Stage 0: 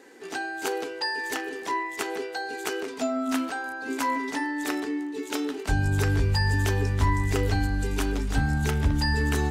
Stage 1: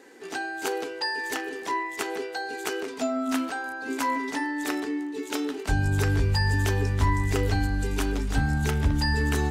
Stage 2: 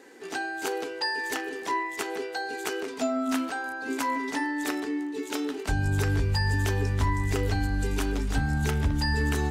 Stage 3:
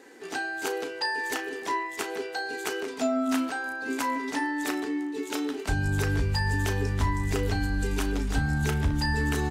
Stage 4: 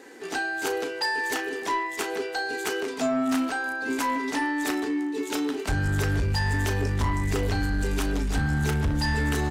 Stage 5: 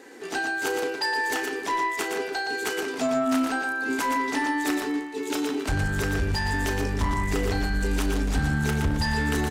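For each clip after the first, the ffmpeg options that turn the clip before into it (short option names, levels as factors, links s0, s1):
-af anull
-af "alimiter=limit=0.15:level=0:latency=1:release=318"
-filter_complex "[0:a]asplit=2[s0][s1];[s1]adelay=35,volume=0.251[s2];[s0][s2]amix=inputs=2:normalize=0"
-af "asoftclip=type=tanh:threshold=0.0708,volume=1.58"
-af "aecho=1:1:118:0.531"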